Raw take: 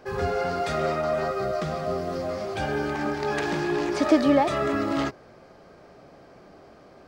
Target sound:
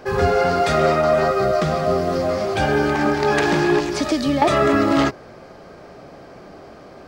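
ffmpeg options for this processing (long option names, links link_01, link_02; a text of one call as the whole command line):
ffmpeg -i in.wav -filter_complex "[0:a]asettb=1/sr,asplit=3[link_01][link_02][link_03];[link_01]atrim=end=3.794[link_04];[link_02]atrim=start=3.79:end=4.42,asetpts=PTS-STARTPTS,afade=type=in:duration=0.004:curve=qsin,afade=type=out:start_time=0.626:duration=0.004:curve=qsin,acrossover=split=190|3000[link_05][link_06][link_07];[link_06]acompressor=threshold=-33dB:ratio=4[link_08];[link_05][link_08][link_07]amix=inputs=3:normalize=0[link_09];[link_03]atrim=start=4.416[link_10];[link_04][link_09]acrossfade=duration=0.004:curve1=hsin:curve2=qsin[link_11];[link_11][link_10]acrossfade=duration=0.004:curve1=qsin:curve2=hsin,volume=9dB" out.wav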